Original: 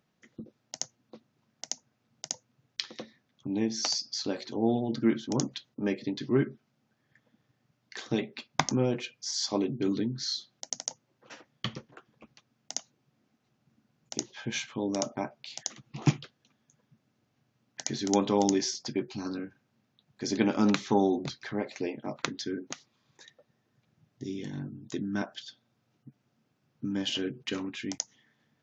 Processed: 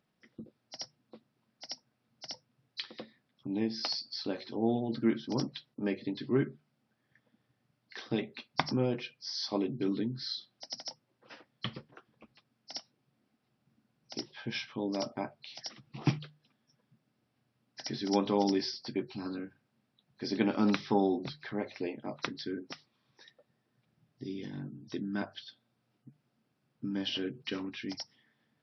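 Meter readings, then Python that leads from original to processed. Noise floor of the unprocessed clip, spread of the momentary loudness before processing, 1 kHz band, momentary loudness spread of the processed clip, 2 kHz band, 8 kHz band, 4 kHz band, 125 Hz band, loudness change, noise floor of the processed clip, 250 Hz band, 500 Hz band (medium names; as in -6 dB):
-76 dBFS, 17 LU, -3.0 dB, 16 LU, -3.0 dB, no reading, -3.0 dB, -3.5 dB, -3.5 dB, -79 dBFS, -3.0 dB, -3.0 dB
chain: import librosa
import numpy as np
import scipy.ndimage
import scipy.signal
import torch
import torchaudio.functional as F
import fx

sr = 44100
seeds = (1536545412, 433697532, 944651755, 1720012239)

y = fx.freq_compress(x, sr, knee_hz=3900.0, ratio=1.5)
y = fx.hum_notches(y, sr, base_hz=50, count=3)
y = y * 10.0 ** (-3.0 / 20.0)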